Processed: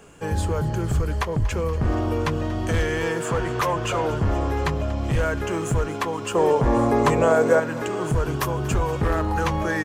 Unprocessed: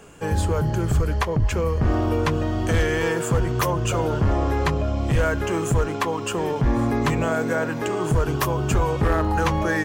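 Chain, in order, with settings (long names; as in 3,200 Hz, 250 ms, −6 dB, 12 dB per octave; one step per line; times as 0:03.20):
0:03.25–0:04.10: mid-hump overdrive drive 13 dB, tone 2,800 Hz, clips at −11.5 dBFS
0:06.35–0:07.60: octave-band graphic EQ 500/1,000/8,000 Hz +10/+6/+5 dB
on a send: feedback echo with a high-pass in the loop 237 ms, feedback 80%, level −18 dB
on the sum: downsampling to 32,000 Hz
level −2 dB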